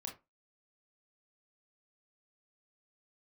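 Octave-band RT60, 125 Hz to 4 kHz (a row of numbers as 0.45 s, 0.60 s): 0.25 s, 0.25 s, 0.25 s, 0.25 s, 0.20 s, 0.15 s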